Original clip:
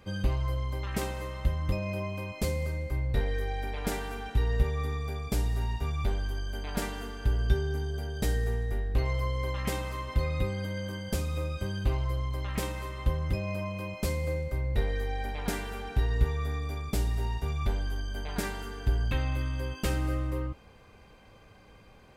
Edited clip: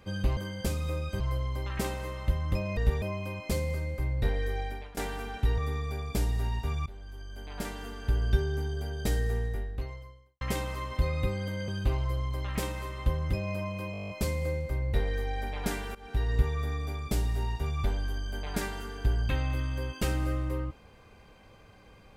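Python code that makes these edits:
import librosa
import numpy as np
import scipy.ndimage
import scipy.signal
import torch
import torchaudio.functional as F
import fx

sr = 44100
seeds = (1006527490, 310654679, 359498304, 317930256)

y = fx.edit(x, sr, fx.fade_out_to(start_s=3.53, length_s=0.36, floor_db=-22.0),
    fx.move(start_s=4.5, length_s=0.25, to_s=1.94),
    fx.fade_in_from(start_s=6.03, length_s=1.33, floor_db=-20.0),
    fx.fade_out_span(start_s=8.62, length_s=0.96, curve='qua'),
    fx.move(start_s=10.85, length_s=0.83, to_s=0.37),
    fx.stutter(start_s=13.92, slice_s=0.02, count=10),
    fx.fade_in_from(start_s=15.77, length_s=0.44, curve='qsin', floor_db=-19.0), tone=tone)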